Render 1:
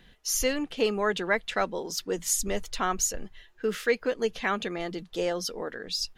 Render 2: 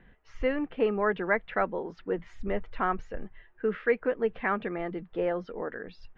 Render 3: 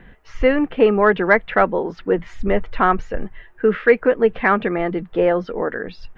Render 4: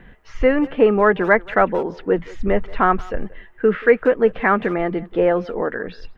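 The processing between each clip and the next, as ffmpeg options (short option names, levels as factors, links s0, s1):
-af "lowpass=f=2100:w=0.5412,lowpass=f=2100:w=1.3066"
-af "acontrast=89,volume=1.78"
-filter_complex "[0:a]asplit=2[s0][s1];[s1]adelay=180,highpass=300,lowpass=3400,asoftclip=type=hard:threshold=0.266,volume=0.1[s2];[s0][s2]amix=inputs=2:normalize=0,acrossover=split=2600[s3][s4];[s4]acompressor=threshold=0.00794:ratio=4:attack=1:release=60[s5];[s3][s5]amix=inputs=2:normalize=0"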